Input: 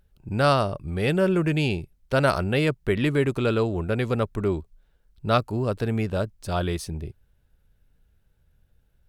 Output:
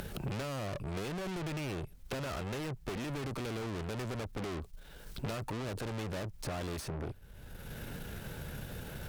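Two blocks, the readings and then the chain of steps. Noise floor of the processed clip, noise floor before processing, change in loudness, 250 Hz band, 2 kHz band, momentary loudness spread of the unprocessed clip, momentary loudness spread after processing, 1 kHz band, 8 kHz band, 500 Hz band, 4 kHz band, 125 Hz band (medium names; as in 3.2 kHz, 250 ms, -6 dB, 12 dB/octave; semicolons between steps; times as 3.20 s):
-53 dBFS, -66 dBFS, -15.0 dB, -13.5 dB, -13.5 dB, 10 LU, 7 LU, -14.5 dB, -3.5 dB, -16.0 dB, -11.0 dB, -12.5 dB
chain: peak limiter -17.5 dBFS, peak gain reduction 10 dB; valve stage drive 46 dB, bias 0.45; three bands compressed up and down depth 100%; trim +8.5 dB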